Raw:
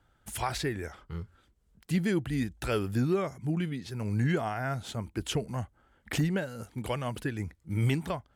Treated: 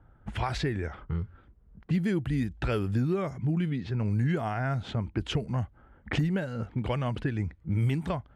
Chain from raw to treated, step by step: low-pass opened by the level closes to 1300 Hz, open at -25 dBFS; tone controls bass +5 dB, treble -5 dB; compressor 2.5:1, threshold -35 dBFS, peak gain reduction 11 dB; gain +6.5 dB

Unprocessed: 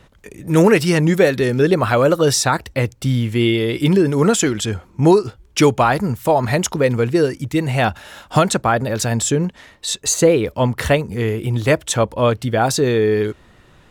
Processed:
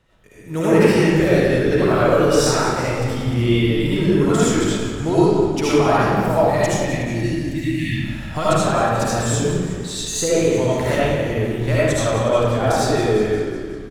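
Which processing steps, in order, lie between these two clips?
spectral delete 6.64–7.95, 350–1700 Hz; frequency-shifting echo 0.182 s, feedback 61%, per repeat -46 Hz, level -10.5 dB; digital reverb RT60 1.5 s, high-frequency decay 0.65×, pre-delay 35 ms, DRR -9.5 dB; in parallel at -8.5 dB: backlash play -20.5 dBFS; on the sum: gain -14 dB

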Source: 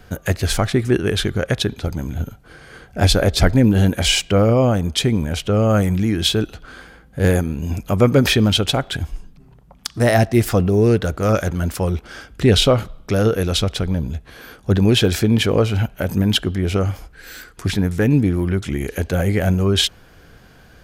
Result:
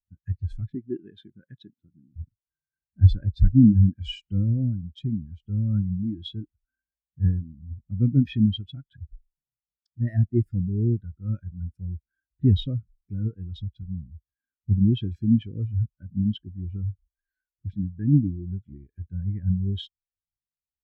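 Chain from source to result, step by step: 0.75–2.16 HPF 160 Hz 12 dB/oct; band shelf 700 Hz -10.5 dB; spectral expander 2.5:1; gain -2.5 dB

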